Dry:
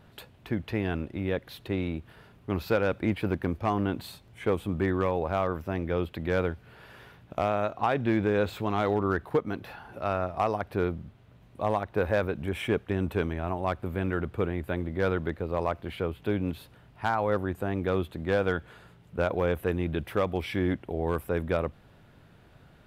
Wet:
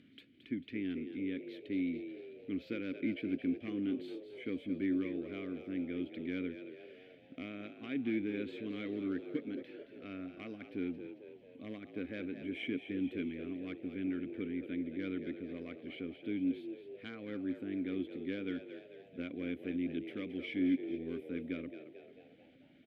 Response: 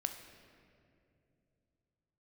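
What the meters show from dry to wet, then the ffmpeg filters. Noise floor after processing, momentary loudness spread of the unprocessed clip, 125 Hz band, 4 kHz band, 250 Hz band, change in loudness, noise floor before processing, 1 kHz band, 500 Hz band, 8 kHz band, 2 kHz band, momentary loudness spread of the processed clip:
-60 dBFS, 8 LU, -18.5 dB, -9.0 dB, -4.0 dB, -10.0 dB, -56 dBFS, -28.0 dB, -15.0 dB, n/a, -12.0 dB, 12 LU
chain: -filter_complex "[0:a]acompressor=mode=upward:threshold=-44dB:ratio=2.5,asplit=3[a][b][c];[a]bandpass=f=270:t=q:w=8,volume=0dB[d];[b]bandpass=f=2.29k:t=q:w=8,volume=-6dB[e];[c]bandpass=f=3.01k:t=q:w=8,volume=-9dB[f];[d][e][f]amix=inputs=3:normalize=0,asplit=7[g][h][i][j][k][l][m];[h]adelay=222,afreqshift=62,volume=-10.5dB[n];[i]adelay=444,afreqshift=124,volume=-16.2dB[o];[j]adelay=666,afreqshift=186,volume=-21.9dB[p];[k]adelay=888,afreqshift=248,volume=-27.5dB[q];[l]adelay=1110,afreqshift=310,volume=-33.2dB[r];[m]adelay=1332,afreqshift=372,volume=-38.9dB[s];[g][n][o][p][q][r][s]amix=inputs=7:normalize=0,volume=2dB"

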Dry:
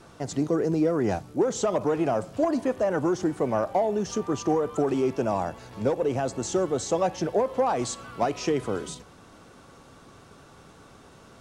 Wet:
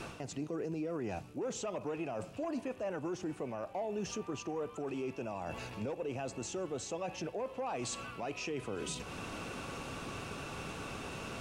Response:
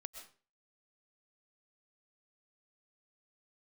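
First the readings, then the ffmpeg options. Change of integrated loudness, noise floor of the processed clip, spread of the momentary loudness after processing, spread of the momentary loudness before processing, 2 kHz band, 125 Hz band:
-13.5 dB, -51 dBFS, 4 LU, 5 LU, -5.5 dB, -10.5 dB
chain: -af "equalizer=f=2.6k:t=o:w=0.29:g=12.5,areverse,acompressor=threshold=-36dB:ratio=8,areverse,alimiter=level_in=13.5dB:limit=-24dB:level=0:latency=1:release=231,volume=-13.5dB,volume=7.5dB"

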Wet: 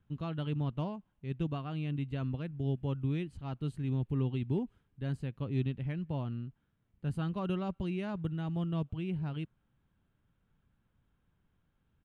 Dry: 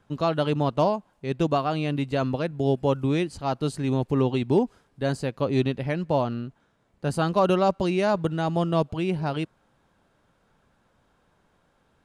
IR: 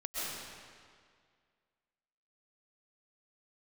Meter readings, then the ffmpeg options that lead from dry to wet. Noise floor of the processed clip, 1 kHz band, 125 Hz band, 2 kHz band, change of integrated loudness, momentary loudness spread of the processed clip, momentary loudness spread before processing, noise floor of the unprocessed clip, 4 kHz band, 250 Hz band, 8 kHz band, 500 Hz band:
-77 dBFS, -18.5 dB, -5.5 dB, -14.5 dB, -10.5 dB, 7 LU, 8 LU, -67 dBFS, -14.5 dB, -9.5 dB, under -20 dB, -17.5 dB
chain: -af "firequalizer=gain_entry='entry(100,0);entry(230,-7);entry(570,-18);entry(1300,-13);entry(3100,-9);entry(4800,-23);entry(11000,-16)':delay=0.05:min_phase=1,volume=-3dB"

